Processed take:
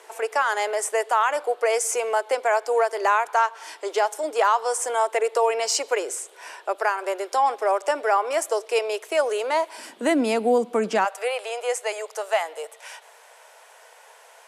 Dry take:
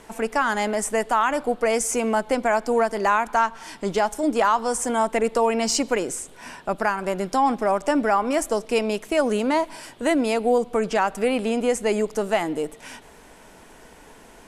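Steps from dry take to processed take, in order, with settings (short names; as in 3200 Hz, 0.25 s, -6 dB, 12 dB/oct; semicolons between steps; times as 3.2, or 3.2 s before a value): steep high-pass 380 Hz 48 dB/oct, from 9.77 s 190 Hz, from 11.04 s 500 Hz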